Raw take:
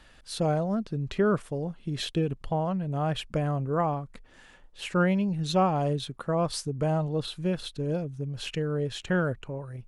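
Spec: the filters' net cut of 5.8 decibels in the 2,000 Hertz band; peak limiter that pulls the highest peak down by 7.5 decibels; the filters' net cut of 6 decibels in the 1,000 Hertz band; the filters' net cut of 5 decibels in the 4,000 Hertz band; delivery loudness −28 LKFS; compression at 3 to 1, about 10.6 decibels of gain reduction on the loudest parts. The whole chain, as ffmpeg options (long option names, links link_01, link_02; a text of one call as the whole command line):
ffmpeg -i in.wav -af "equalizer=frequency=1000:width_type=o:gain=-8,equalizer=frequency=2000:width_type=o:gain=-3.5,equalizer=frequency=4000:width_type=o:gain=-4.5,acompressor=threshold=-35dB:ratio=3,volume=12dB,alimiter=limit=-19dB:level=0:latency=1" out.wav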